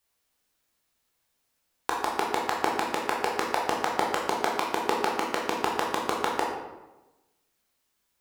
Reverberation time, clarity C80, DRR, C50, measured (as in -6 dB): 1.1 s, 5.5 dB, -2.5 dB, 3.0 dB